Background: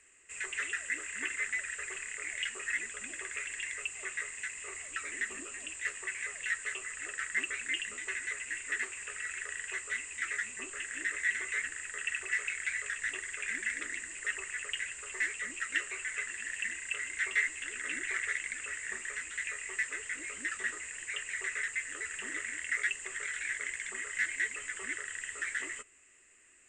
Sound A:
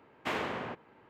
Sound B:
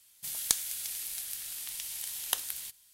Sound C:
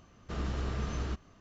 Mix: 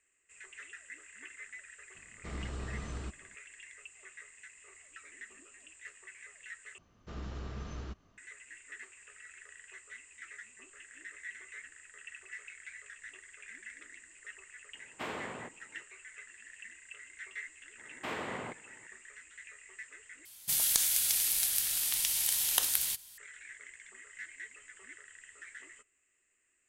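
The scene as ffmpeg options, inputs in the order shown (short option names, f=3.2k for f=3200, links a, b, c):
-filter_complex "[3:a]asplit=2[a][b];[1:a]asplit=2[c][d];[0:a]volume=-13.5dB[e];[d]alimiter=level_in=2dB:limit=-24dB:level=0:latency=1:release=106,volume=-2dB[f];[2:a]alimiter=level_in=13dB:limit=-1dB:release=50:level=0:latency=1[g];[e]asplit=3[h][i][j];[h]atrim=end=6.784[k];[b]atrim=end=1.4,asetpts=PTS-STARTPTS,volume=-7.5dB[l];[i]atrim=start=8.176:end=20.254[m];[g]atrim=end=2.93,asetpts=PTS-STARTPTS,volume=-5dB[n];[j]atrim=start=23.176[o];[a]atrim=end=1.4,asetpts=PTS-STARTPTS,volume=-6dB,afade=t=in:d=0.004:c=hsin,afade=t=out:st=1.396:d=0.004:c=hsin,adelay=1950[p];[c]atrim=end=1.09,asetpts=PTS-STARTPTS,volume=-6dB,afade=t=in:d=0.004:c=hsin,afade=t=out:st=1.086:d=0.004:c=hsin,adelay=14740[q];[f]atrim=end=1.09,asetpts=PTS-STARTPTS,volume=-2.5dB,afade=t=in:d=0.004:c=hsin,afade=t=out:st=1.086:d=0.004:c=hsin,adelay=17780[r];[k][l]acrossfade=d=0.004:c1=hsin:c2=hsin[s];[s][m]acrossfade=d=0.004:c1=hsin:c2=hsin[t];[t][n]acrossfade=d=0.004:c1=hsin:c2=hsin[u];[u][o]acrossfade=d=0.004:c1=hsin:c2=hsin[v];[v][p][q][r]amix=inputs=4:normalize=0"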